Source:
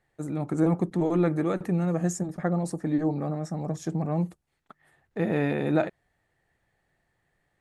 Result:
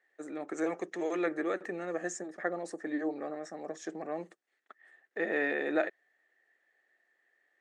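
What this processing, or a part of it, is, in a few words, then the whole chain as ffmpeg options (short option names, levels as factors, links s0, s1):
phone speaker on a table: -filter_complex "[0:a]asettb=1/sr,asplit=3[s0][s1][s2];[s0]atrim=end=0.534[s3];[s1]atrim=start=0.53:end=1.26,asetpts=PTS-STARTPTS,afade=t=in:d=0.004:c=qsin,afade=t=out:st=0.726:d=0.004:c=qsin,equalizer=f=250:t=o:w=0.67:g=-7,equalizer=f=2500:t=o:w=0.67:g=6,equalizer=f=6300:t=o:w=0.67:g=10[s4];[s2]atrim=start=1.256[s5];[s3][s4]acrossfade=d=0.004:c1=hsin:c2=qsin[s6];[s6][s5]acrossfade=d=0.004:c1=qsin:c2=hsin,highpass=f=330:w=0.5412,highpass=f=330:w=1.3066,equalizer=f=930:t=q:w=4:g=-7,equalizer=f=1800:t=q:w=4:g=10,equalizer=f=4600:t=q:w=4:g=-3,lowpass=f=7600:w=0.5412,lowpass=f=7600:w=1.3066,volume=0.668"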